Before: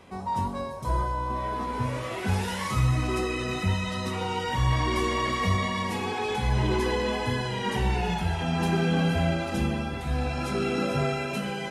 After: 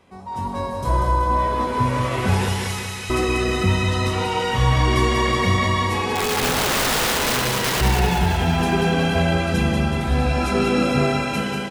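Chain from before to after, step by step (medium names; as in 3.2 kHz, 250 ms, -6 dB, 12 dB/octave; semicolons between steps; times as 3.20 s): 2.48–3.10 s: Bessel high-pass 2.4 kHz, order 8; level rider gain up to 12 dB; 6.13–7.81 s: integer overflow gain 12.5 dB; on a send: feedback delay 188 ms, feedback 60%, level -5 dB; on the sum: trim -4.5 dB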